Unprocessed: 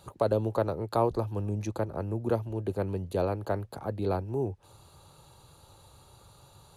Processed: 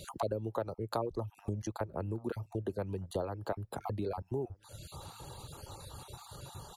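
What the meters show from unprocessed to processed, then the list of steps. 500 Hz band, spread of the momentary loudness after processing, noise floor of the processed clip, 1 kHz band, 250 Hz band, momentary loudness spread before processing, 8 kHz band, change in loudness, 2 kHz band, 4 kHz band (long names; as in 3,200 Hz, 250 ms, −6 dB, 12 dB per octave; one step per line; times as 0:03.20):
−7.5 dB, 12 LU, −66 dBFS, −6.0 dB, −6.5 dB, 6 LU, can't be measured, −8.5 dB, −5.0 dB, 0.0 dB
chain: time-frequency cells dropped at random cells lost 21%
downward compressor 3 to 1, threshold −47 dBFS, peak gain reduction 19 dB
reverb reduction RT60 0.85 s
slap from a distant wall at 210 metres, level −27 dB
level +10 dB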